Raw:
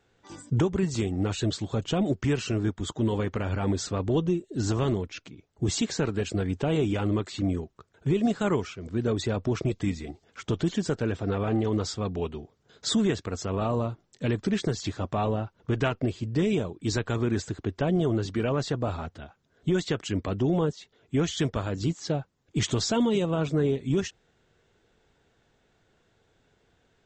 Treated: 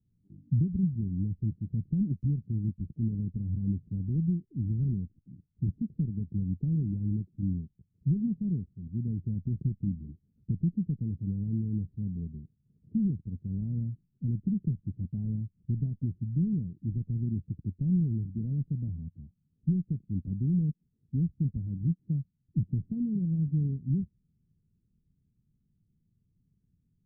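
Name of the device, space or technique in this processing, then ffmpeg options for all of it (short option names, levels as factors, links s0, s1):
the neighbour's flat through the wall: -af "lowpass=f=210:w=0.5412,lowpass=f=210:w=1.3066,equalizer=f=170:t=o:w=0.98:g=5.5,volume=0.708"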